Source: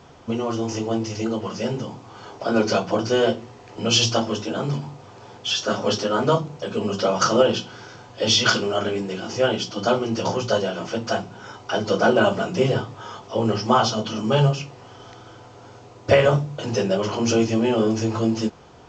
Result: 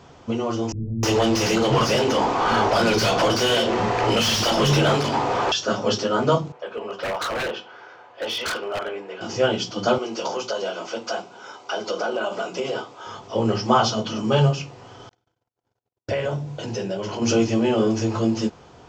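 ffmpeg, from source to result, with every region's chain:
ffmpeg -i in.wav -filter_complex "[0:a]asettb=1/sr,asplit=3[link_01][link_02][link_03];[link_01]atrim=end=0.724[link_04];[link_02]atrim=start=0.72:end=5.52,asetpts=PTS-STARTPTS,afade=type=in:duration=0.004:curve=qsin,afade=type=out:start_time=4.796:duration=0.004:curve=qsin,acrossover=split=140|3000[link_05][link_06][link_07];[link_06]acompressor=threshold=-34dB:ratio=10:attack=3.2:release=140:knee=2.83:detection=peak[link_08];[link_05][link_08][link_07]amix=inputs=3:normalize=0,asplit=2[link_09][link_10];[link_10]highpass=frequency=720:poles=1,volume=36dB,asoftclip=type=tanh:threshold=-7dB[link_11];[link_09][link_11]amix=inputs=2:normalize=0,lowpass=frequency=1400:poles=1,volume=-6dB,acrossover=split=210[link_12][link_13];[link_13]adelay=310[link_14];[link_12][link_14]amix=inputs=2:normalize=0,atrim=end_sample=211680[link_15];[link_03]atrim=start=5.516[link_16];[link_04][link_15]acrossfade=duration=0.004:curve1=hsin:curve2=qsin[link_17];[link_17][link_16]acrossfade=duration=0.004:curve1=qsin:curve2=hsin,asettb=1/sr,asplit=3[link_18][link_19][link_20];[link_18]atrim=end=6.524[link_21];[link_19]atrim=start=6.52:end=9.21,asetpts=PTS-STARTPTS,afade=type=in:duration=0.004:curve=qsin,afade=type=out:start_time=2.686:duration=0.004:curve=qsin,acrossover=split=410 2800:gain=0.0631 1 0.112[link_22][link_23][link_24];[link_22][link_23][link_24]amix=inputs=3:normalize=0,aeval=exprs='0.0891*(abs(mod(val(0)/0.0891+3,4)-2)-1)':channel_layout=same[link_25];[link_20]atrim=start=9.206[link_26];[link_21][link_25]acrossfade=duration=0.004:curve1=hsin:curve2=qsin[link_27];[link_27][link_26]acrossfade=duration=0.004:curve1=qsin:curve2=hsin,asettb=1/sr,asplit=3[link_28][link_29][link_30];[link_28]atrim=end=9.984[link_31];[link_29]atrim=start=9.98:end=13.07,asetpts=PTS-STARTPTS,afade=type=in:duration=0.004:curve=qsin,afade=type=out:start_time=3.086:duration=0.004:curve=qsin,highpass=380,bandreject=frequency=1800:width=9.4,acompressor=threshold=-21dB:ratio=6:attack=3.2:release=140:knee=1:detection=peak[link_32];[link_30]atrim=start=13.066[link_33];[link_31][link_32]acrossfade=duration=0.004:curve1=hsin:curve2=qsin[link_34];[link_34][link_33]acrossfade=duration=0.004:curve1=qsin:curve2=hsin,asettb=1/sr,asplit=3[link_35][link_36][link_37];[link_35]atrim=end=15.094[link_38];[link_36]atrim=start=15.09:end=17.22,asetpts=PTS-STARTPTS,afade=type=in:duration=0.004:curve=qsin,afade=type=out:start_time=2.126:duration=0.004:curve=qsin,bandreject=frequency=1200:width=8.2,acompressor=threshold=-28dB:ratio=2:attack=3.2:release=140:knee=1:detection=peak,agate=range=-55dB:threshold=-40dB:ratio=16:release=100:detection=peak[link_39];[link_37]atrim=start=17.216[link_40];[link_38][link_39]acrossfade=duration=0.004:curve1=hsin:curve2=qsin[link_41];[link_41][link_40]acrossfade=duration=0.004:curve1=qsin:curve2=hsin" out.wav

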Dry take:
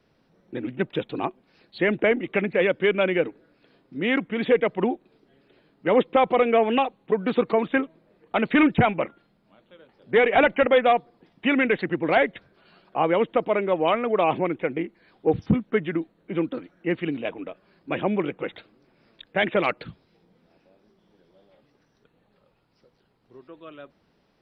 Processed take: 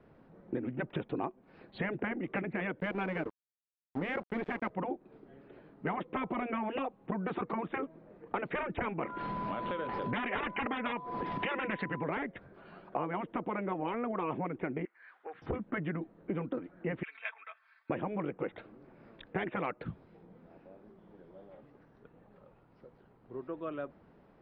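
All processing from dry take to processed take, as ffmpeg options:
ffmpeg -i in.wav -filter_complex "[0:a]asettb=1/sr,asplit=3[link_01][link_02][link_03];[link_01]atrim=end=2.804[link_04];[link_02]atrim=start=2.8:end=4.7,asetpts=PTS-STARTPTS,afade=type=in:duration=0.004:curve=qsin,afade=type=out:start_time=1.896:duration=0.004:curve=qsin,equalizer=frequency=530:width_type=o:width=1.2:gain=5,aeval=exprs='sgn(val(0))*max(abs(val(0))-0.02,0)':channel_layout=same,acrusher=bits=7:mix=0:aa=0.5[link_05];[link_03]atrim=start=4.696[link_06];[link_04][link_05]acrossfade=duration=0.004:curve1=hsin:curve2=qsin[link_07];[link_07][link_06]acrossfade=duration=0.004:curve1=qsin:curve2=hsin,asettb=1/sr,asplit=3[link_08][link_09][link_10];[link_08]atrim=end=9.034[link_11];[link_09]atrim=start=9.03:end=12.04,asetpts=PTS-STARTPTS,afade=type=in:duration=0.004:curve=qsin,afade=type=out:start_time=3.006:duration=0.004:curve=qsin,acompressor=mode=upward:threshold=-24dB:ratio=2.5:attack=3.2:release=140:knee=2.83:detection=peak,aeval=exprs='val(0)+0.00794*sin(2*PI*1000*n/s)':channel_layout=same,equalizer=frequency=4000:width=0.36:gain=8.5[link_12];[link_10]atrim=start=12.036[link_13];[link_11][link_12]acrossfade=duration=0.004:curve1=hsin:curve2=qsin[link_14];[link_14][link_13]acrossfade=duration=0.004:curve1=qsin:curve2=hsin,asettb=1/sr,asplit=3[link_15][link_16][link_17];[link_15]atrim=end=14.854[link_18];[link_16]atrim=start=14.85:end=15.42,asetpts=PTS-STARTPTS,afade=type=in:duration=0.004:curve=qsin,afade=type=out:start_time=0.566:duration=0.004:curve=qsin,highpass=frequency=1600:width_type=q:width=2.2,highshelf=frequency=2700:gain=-8,acompressor=threshold=-45dB:ratio=5:attack=3.2:release=140:knee=1:detection=peak[link_19];[link_17]atrim=start=15.416[link_20];[link_18][link_19]acrossfade=duration=0.004:curve1=hsin:curve2=qsin[link_21];[link_21][link_20]acrossfade=duration=0.004:curve1=qsin:curve2=hsin,asettb=1/sr,asplit=3[link_22][link_23][link_24];[link_22]atrim=end=17.034[link_25];[link_23]atrim=start=17.03:end=17.9,asetpts=PTS-STARTPTS,afade=type=in:duration=0.004:curve=qsin,afade=type=out:start_time=0.866:duration=0.004:curve=qsin,highpass=frequency=1400:width=0.5412,highpass=frequency=1400:width=1.3066,bandreject=frequency=2900:width=10,aecho=1:1:4.5:0.69,atrim=end_sample=38367[link_26];[link_24]atrim=start=17.896[link_27];[link_25][link_26]acrossfade=duration=0.004:curve1=hsin:curve2=qsin[link_28];[link_28][link_27]acrossfade=duration=0.004:curve1=qsin:curve2=hsin,afftfilt=real='re*lt(hypot(re,im),0.447)':imag='im*lt(hypot(re,im),0.447)':win_size=1024:overlap=0.75,lowpass=1500,acompressor=threshold=-38dB:ratio=6,volume=5.5dB" out.wav

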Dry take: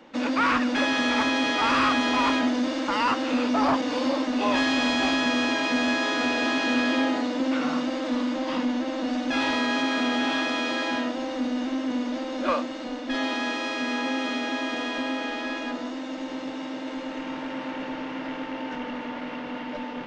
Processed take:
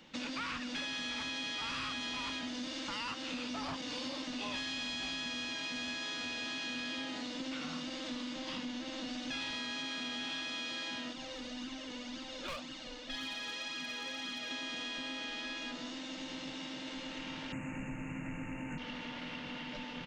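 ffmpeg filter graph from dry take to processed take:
ffmpeg -i in.wav -filter_complex "[0:a]asettb=1/sr,asplit=3[link_01][link_02][link_03];[link_01]atrim=end=11.134[link_04];[link_02]atrim=start=11.13:end=14.51,asetpts=PTS-STARTPTS,afade=type=in:duration=0.004:curve=qsin,afade=type=out:start_time=3.376:duration=0.004:curve=qsin,flanger=delay=0.6:depth=1.8:regen=23:speed=1.9:shape=triangular,volume=25dB,asoftclip=hard,volume=-25dB[link_05];[link_03]atrim=start=14.506[link_06];[link_04][link_05]acrossfade=duration=0.004:curve1=hsin:curve2=qsin[link_07];[link_07][link_06]acrossfade=duration=0.004:curve1=qsin:curve2=hsin,asettb=1/sr,asplit=3[link_08][link_09][link_10];[link_08]atrim=end=17.524[link_11];[link_09]atrim=start=17.52:end=18.78,asetpts=PTS-STARTPTS,afade=type=in:duration=0.004:curve=qsin,afade=type=out:start_time=1.256:duration=0.004:curve=qsin,asuperstop=centerf=4300:order=20:qfactor=1.1,bass=frequency=250:gain=13,treble=frequency=4000:gain=10[link_12];[link_10]atrim=start=18.776[link_13];[link_11][link_12]acrossfade=duration=0.004:curve1=hsin:curve2=qsin[link_14];[link_14][link_13]acrossfade=duration=0.004:curve1=qsin:curve2=hsin,firequalizer=gain_entry='entry(180,0);entry(250,-11);entry(610,-13);entry(3100,1)':delay=0.05:min_phase=1,acompressor=threshold=-38dB:ratio=4" out.wav

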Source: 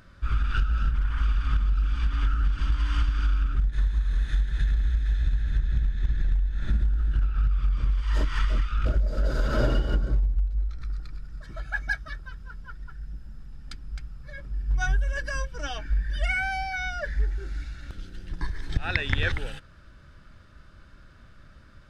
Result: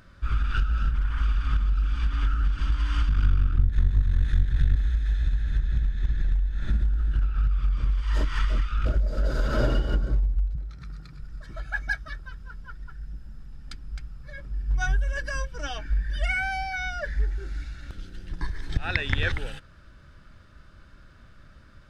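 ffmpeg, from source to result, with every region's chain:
ffmpeg -i in.wav -filter_complex "[0:a]asettb=1/sr,asplit=3[link_01][link_02][link_03];[link_01]atrim=end=3.094[link_04];[link_02]atrim=start=3.09:end=4.76,asetpts=PTS-STARTPTS,afade=type=in:duration=0.004:curve=qsin,afade=type=out:start_time=1.666:duration=0.004:curve=qsin,aeval=exprs='clip(val(0),-1,0.0376)':channel_layout=same,bass=frequency=250:gain=6,treble=frequency=4000:gain=-3,asplit=2[link_05][link_06];[link_06]adelay=34,volume=-12.5dB[link_07];[link_05][link_07]amix=inputs=2:normalize=0,atrim=end_sample=73647[link_08];[link_03]atrim=start=4.756[link_09];[link_04][link_08]acrossfade=duration=0.004:curve1=hsin:curve2=qsin[link_10];[link_10][link_09]acrossfade=duration=0.004:curve1=qsin:curve2=hsin,asettb=1/sr,asplit=3[link_11][link_12][link_13];[link_11]atrim=end=10.554[link_14];[link_12]atrim=start=10.55:end=11.2,asetpts=PTS-STARTPTS,afade=type=in:duration=0.004:curve=qsin,afade=type=out:start_time=0.646:duration=0.004:curve=qsin,highpass=70,equalizer=frequency=160:width=3.3:gain=9[link_15];[link_13]atrim=start=11.196[link_16];[link_14][link_15]acrossfade=duration=0.004:curve1=hsin:curve2=qsin[link_17];[link_17][link_16]acrossfade=duration=0.004:curve1=qsin:curve2=hsin" out.wav

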